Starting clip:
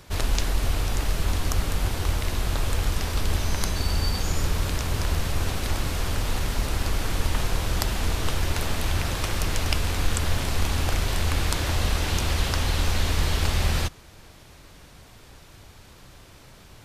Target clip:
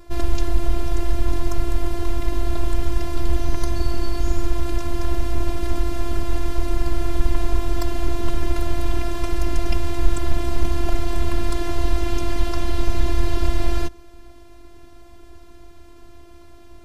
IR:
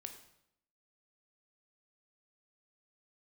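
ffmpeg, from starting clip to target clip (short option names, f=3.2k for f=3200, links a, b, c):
-af "afftfilt=real='hypot(re,im)*cos(PI*b)':imag='0':win_size=512:overlap=0.75,acontrast=48,tiltshelf=f=970:g=7.5,volume=-2dB"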